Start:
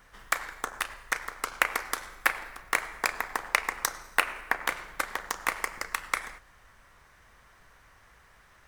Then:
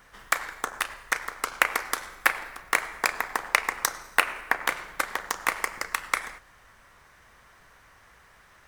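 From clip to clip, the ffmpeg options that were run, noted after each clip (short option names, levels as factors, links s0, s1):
-af "lowshelf=f=75:g=-6.5,volume=1.41"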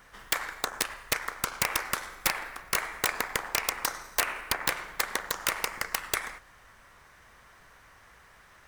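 -af "aeval=exprs='(mod(5.01*val(0)+1,2)-1)/5.01':c=same"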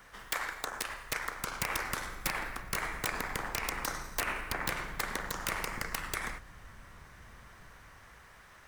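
-filter_complex "[0:a]acrossover=split=270[s0][s1];[s0]dynaudnorm=f=360:g=9:m=3.55[s2];[s2][s1]amix=inputs=2:normalize=0,alimiter=limit=0.106:level=0:latency=1:release=51"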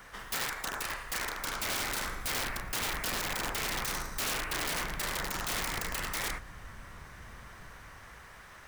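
-af "aeval=exprs='(mod(37.6*val(0)+1,2)-1)/37.6':c=same,volume=1.68"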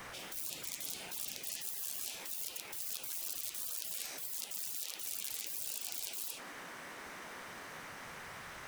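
-af "afftfilt=real='re*lt(hypot(re,im),0.01)':imag='im*lt(hypot(re,im),0.01)':win_size=1024:overlap=0.75,flanger=delay=5.4:depth=10:regen=81:speed=1.8:shape=sinusoidal,volume=2.99"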